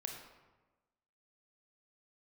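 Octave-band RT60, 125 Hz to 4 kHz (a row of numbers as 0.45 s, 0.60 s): 1.3 s, 1.3 s, 1.2 s, 1.2 s, 0.95 s, 0.70 s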